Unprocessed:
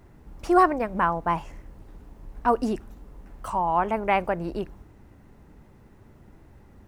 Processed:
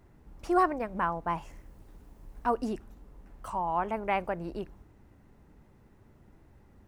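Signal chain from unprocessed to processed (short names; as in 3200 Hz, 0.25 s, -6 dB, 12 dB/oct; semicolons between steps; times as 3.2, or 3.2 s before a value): 1.42–2.48 high shelf 5200 Hz +7.5 dB; gain -6.5 dB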